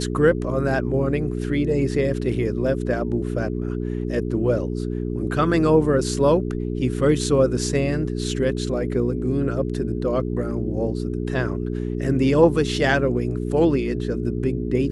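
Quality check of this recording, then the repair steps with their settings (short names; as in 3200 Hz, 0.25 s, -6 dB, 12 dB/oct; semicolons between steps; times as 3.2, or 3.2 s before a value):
hum 60 Hz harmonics 7 -26 dBFS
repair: de-hum 60 Hz, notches 7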